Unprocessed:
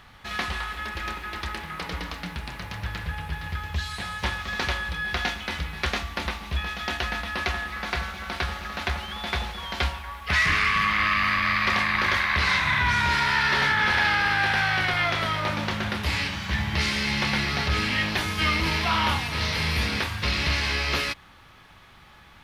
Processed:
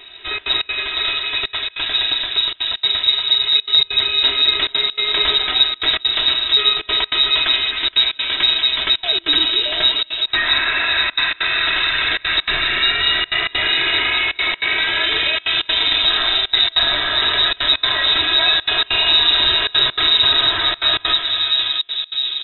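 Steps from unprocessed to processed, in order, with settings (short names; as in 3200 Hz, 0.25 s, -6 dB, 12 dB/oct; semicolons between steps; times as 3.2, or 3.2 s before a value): low shelf 130 Hz -5 dB; comb 3.2 ms, depth 90%; darkening echo 0.658 s, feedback 67%, low-pass 860 Hz, level -4 dB; in parallel at 0 dB: negative-ratio compressor -26 dBFS; on the sum: low shelf 310 Hz +9.5 dB; outdoor echo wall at 68 m, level -11 dB; on a send at -8 dB: reverb RT60 1.3 s, pre-delay 37 ms; on the sum: inverted band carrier 3800 Hz; step gate "xxxxx.xx.xxxxx" 196 bpm -24 dB; gain -3 dB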